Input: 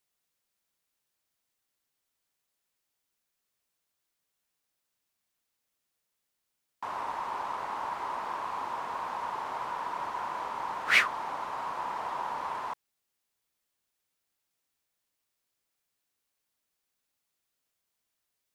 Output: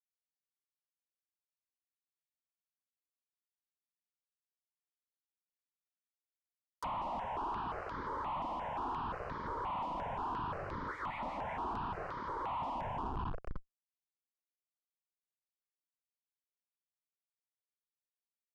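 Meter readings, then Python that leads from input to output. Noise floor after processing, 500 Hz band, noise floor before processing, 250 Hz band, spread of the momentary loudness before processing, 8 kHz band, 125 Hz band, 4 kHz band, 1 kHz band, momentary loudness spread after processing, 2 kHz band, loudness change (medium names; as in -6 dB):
under -85 dBFS, -1.0 dB, -83 dBFS, +5.0 dB, 11 LU, under -15 dB, +11.0 dB, -15.0 dB, -4.5 dB, 3 LU, -15.5 dB, -7.0 dB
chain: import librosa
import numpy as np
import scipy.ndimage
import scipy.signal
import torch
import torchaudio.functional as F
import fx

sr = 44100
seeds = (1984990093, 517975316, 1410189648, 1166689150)

p1 = fx.highpass(x, sr, hz=190.0, slope=6)
p2 = fx.bass_treble(p1, sr, bass_db=-3, treble_db=3)
p3 = p2 + fx.echo_split(p2, sr, split_hz=1300.0, low_ms=276, high_ms=185, feedback_pct=52, wet_db=-6.0, dry=0)
p4 = fx.rider(p3, sr, range_db=10, speed_s=2.0)
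p5 = fx.schmitt(p4, sr, flips_db=-38.0)
p6 = fx.env_lowpass_down(p5, sr, base_hz=1500.0, full_db=-35.5)
p7 = fx.phaser_held(p6, sr, hz=5.7, low_hz=420.0, high_hz=2700.0)
y = p7 * 10.0 ** (1.0 / 20.0)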